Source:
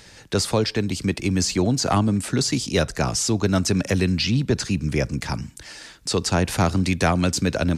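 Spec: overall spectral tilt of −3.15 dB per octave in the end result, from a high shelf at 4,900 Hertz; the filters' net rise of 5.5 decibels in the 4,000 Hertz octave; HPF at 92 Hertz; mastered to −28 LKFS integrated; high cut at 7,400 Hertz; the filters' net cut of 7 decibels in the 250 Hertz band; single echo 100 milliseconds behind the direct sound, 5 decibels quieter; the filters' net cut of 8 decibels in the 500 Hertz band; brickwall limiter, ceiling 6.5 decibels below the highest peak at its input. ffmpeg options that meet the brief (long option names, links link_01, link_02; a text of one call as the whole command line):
ffmpeg -i in.wav -af "highpass=92,lowpass=7400,equalizer=frequency=250:width_type=o:gain=-8,equalizer=frequency=500:width_type=o:gain=-8,equalizer=frequency=4000:width_type=o:gain=6,highshelf=frequency=4900:gain=3,alimiter=limit=-13dB:level=0:latency=1,aecho=1:1:100:0.562,volume=-4.5dB" out.wav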